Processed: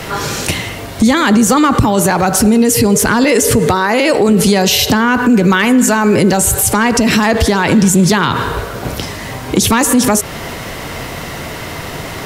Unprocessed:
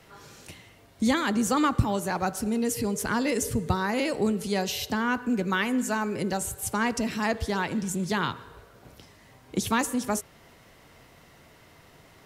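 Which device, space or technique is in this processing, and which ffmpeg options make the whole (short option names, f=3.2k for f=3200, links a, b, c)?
loud club master: -filter_complex "[0:a]asettb=1/sr,asplit=3[a][b][c];[a]atrim=end=3.244[d];[b]atrim=start=3.24:end=4.29,asetpts=PTS-STARTPTS,afade=t=in:d=0.004:c=qsin,afade=t=out:st=1.046:d=0.004:c=qsin,bass=f=250:g=-10,treble=f=4k:g=-3[e];[c]atrim=start=4.286[f];[d][e]acrossfade=d=0.004:c1=hsin:c2=qsin[g];[g][f]acrossfade=d=0.004:c1=qsin:c2=hsin,acompressor=threshold=-30dB:ratio=2.5,asoftclip=type=hard:threshold=-22.5dB,alimiter=level_in=31.5dB:limit=-1dB:release=50:level=0:latency=1,volume=-2dB"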